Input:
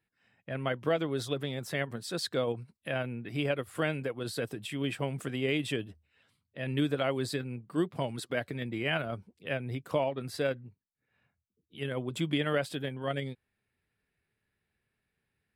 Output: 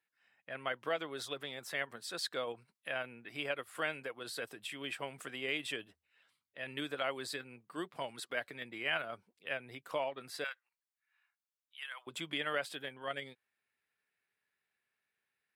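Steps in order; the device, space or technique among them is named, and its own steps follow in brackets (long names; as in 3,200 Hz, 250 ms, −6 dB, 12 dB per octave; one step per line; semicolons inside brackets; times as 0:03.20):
filter by subtraction (in parallel: low-pass filter 1,300 Hz 12 dB per octave + polarity inversion)
0:10.44–0:12.07: on the sum: inverse Chebyshev high-pass filter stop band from 160 Hz, stop band 80 dB
level −3.5 dB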